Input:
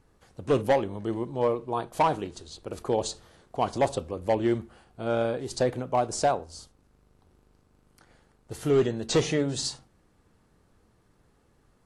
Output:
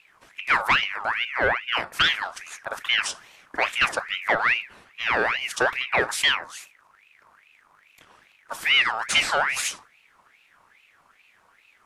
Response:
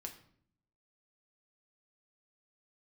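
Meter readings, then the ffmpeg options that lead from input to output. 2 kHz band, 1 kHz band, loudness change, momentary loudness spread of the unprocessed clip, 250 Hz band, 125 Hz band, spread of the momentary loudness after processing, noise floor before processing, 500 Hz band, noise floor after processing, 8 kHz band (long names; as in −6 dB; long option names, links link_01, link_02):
+19.0 dB, +3.0 dB, +5.0 dB, 15 LU, −11.5 dB, −12.0 dB, 15 LU, −65 dBFS, −5.5 dB, −61 dBFS, +4.5 dB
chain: -af "asoftclip=type=tanh:threshold=-18dB,aeval=exprs='val(0)*sin(2*PI*1800*n/s+1800*0.45/2.4*sin(2*PI*2.4*n/s))':channel_layout=same,volume=7.5dB"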